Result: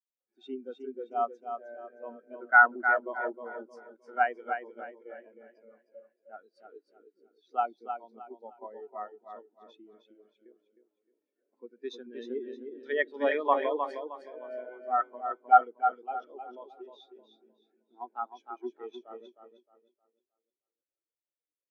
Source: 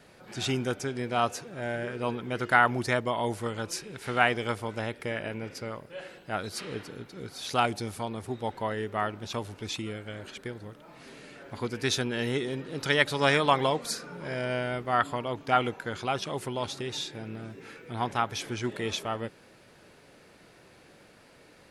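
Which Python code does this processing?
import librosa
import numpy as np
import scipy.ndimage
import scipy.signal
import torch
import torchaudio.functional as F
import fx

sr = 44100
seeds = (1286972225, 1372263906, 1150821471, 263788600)

y = scipy.signal.sosfilt(scipy.signal.butter(4, 240.0, 'highpass', fs=sr, output='sos'), x)
y = fx.echo_feedback(y, sr, ms=310, feedback_pct=59, wet_db=-3.0)
y = fx.spectral_expand(y, sr, expansion=2.5)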